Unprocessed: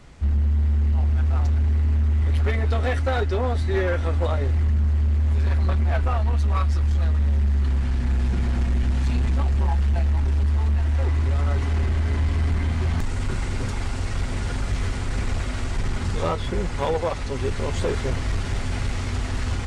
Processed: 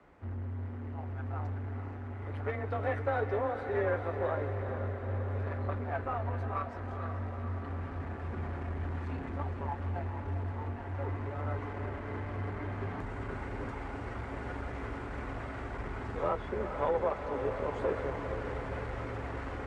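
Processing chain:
three-way crossover with the lows and the highs turned down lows −13 dB, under 240 Hz, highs −22 dB, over 2,000 Hz
mains-hum notches 60/120/180/240 Hz
feedback delay with all-pass diffusion 455 ms, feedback 70%, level −8 dB
frequency shifter +19 Hz
level −5.5 dB

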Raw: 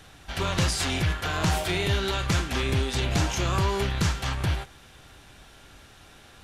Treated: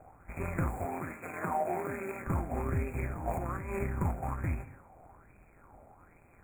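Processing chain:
running median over 25 samples
brick-wall band-stop 2,500–6,700 Hz
0:03.06–0:03.79: compressor whose output falls as the input rises −30 dBFS, ratio −1
amplitude modulation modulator 170 Hz, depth 45%
tape delay 75 ms, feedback 52%, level −16 dB, low-pass 5,200 Hz
dynamic equaliser 980 Hz, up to −4 dB, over −48 dBFS, Q 1.5
0:00.85–0:02.27: high-pass filter 230 Hz 12 dB per octave
high-shelf EQ 7,500 Hz +5.5 dB
convolution reverb, pre-delay 139 ms, DRR 16.5 dB
auto-filter bell 1.2 Hz 680–2,700 Hz +15 dB
level −4 dB

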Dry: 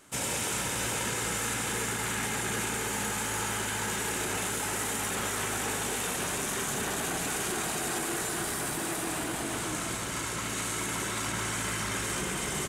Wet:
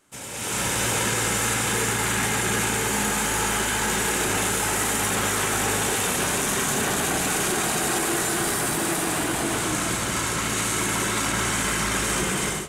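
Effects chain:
automatic gain control gain up to 15 dB
on a send: convolution reverb RT60 1.5 s, pre-delay 3 ms, DRR 10.5 dB
on the sum: level −7 dB

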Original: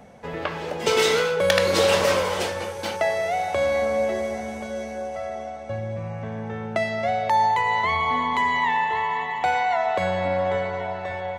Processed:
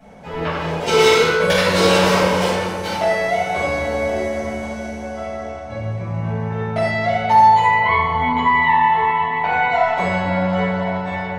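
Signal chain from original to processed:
0:07.65–0:09.69: low-pass filter 3,100 Hz 12 dB per octave
rectangular room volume 590 cubic metres, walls mixed, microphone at 7.9 metres
level −9 dB

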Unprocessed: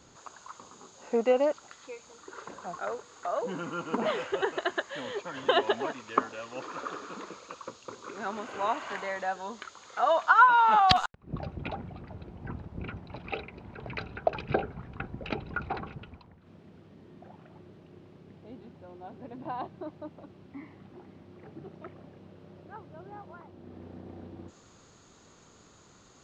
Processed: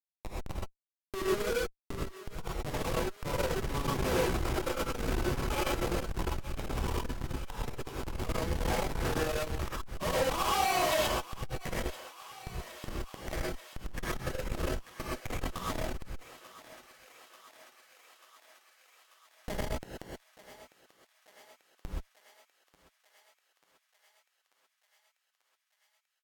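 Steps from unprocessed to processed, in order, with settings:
bass and treble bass −13 dB, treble +11 dB
comb filter 6.6 ms, depth 74%
in parallel at +2.5 dB: downward compressor 12 to 1, threshold −40 dBFS, peak gain reduction 28.5 dB
on the sum: comparator with hysteresis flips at −26 dBFS
pitch shifter −3.5 semitones
on a send: feedback echo with a high-pass in the loop 889 ms, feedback 74%, high-pass 590 Hz, level −15.5 dB
on the sum: reverb whose tail is shaped and stops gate 150 ms rising, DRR −6 dB
saturating transformer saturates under 130 Hz
level −4.5 dB

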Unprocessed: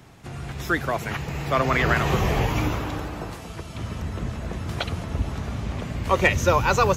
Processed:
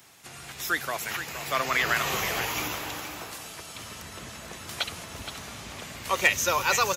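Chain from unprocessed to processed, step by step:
spectral tilt +4 dB per octave
on a send: single-tap delay 470 ms −10 dB
on the sum: level −5 dB

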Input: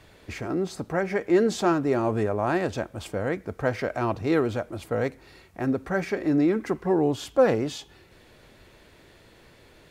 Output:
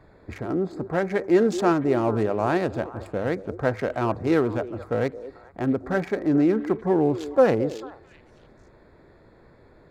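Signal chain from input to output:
adaptive Wiener filter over 15 samples
mains-hum notches 50/100 Hz
echo through a band-pass that steps 220 ms, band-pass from 400 Hz, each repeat 1.4 octaves, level −11.5 dB
level +2 dB

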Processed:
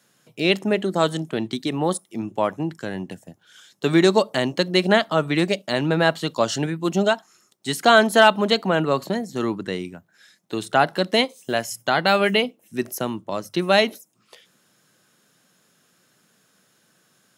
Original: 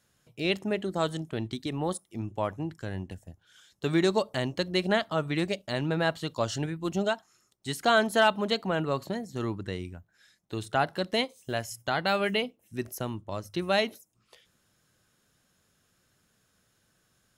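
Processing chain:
high-pass filter 150 Hz 24 dB per octave
level +8.5 dB

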